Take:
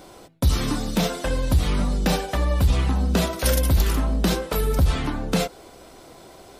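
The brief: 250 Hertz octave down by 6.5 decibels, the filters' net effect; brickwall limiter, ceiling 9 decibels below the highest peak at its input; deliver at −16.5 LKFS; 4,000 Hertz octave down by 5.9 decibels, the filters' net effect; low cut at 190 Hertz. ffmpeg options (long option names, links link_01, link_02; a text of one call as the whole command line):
ffmpeg -i in.wav -af "highpass=190,equalizer=frequency=250:width_type=o:gain=-6,equalizer=frequency=4000:width_type=o:gain=-7.5,volume=15dB,alimiter=limit=-5dB:level=0:latency=1" out.wav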